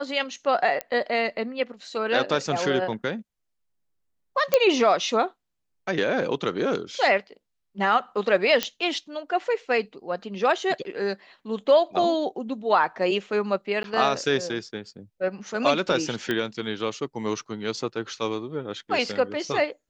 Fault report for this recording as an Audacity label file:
0.810000	0.810000	pop -12 dBFS
4.540000	4.540000	pop -5 dBFS
8.630000	8.630000	pop -7 dBFS
13.830000	13.840000	dropout 12 ms
16.310000	16.310000	pop -13 dBFS

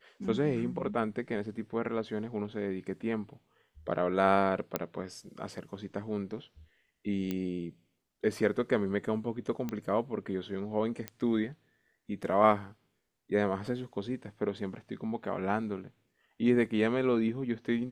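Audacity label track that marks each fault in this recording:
4.760000	4.760000	pop -14 dBFS
7.310000	7.310000	pop -20 dBFS
9.690000	9.690000	pop -22 dBFS
11.080000	11.080000	pop -20 dBFS

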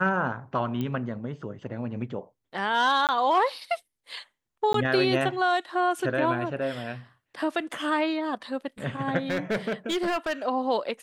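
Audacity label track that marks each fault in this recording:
0.810000	0.810000	pop -19 dBFS
3.070000	3.090000	dropout 18 ms
4.730000	4.740000	dropout 13 ms
9.300000	10.330000	clipped -22.5 dBFS

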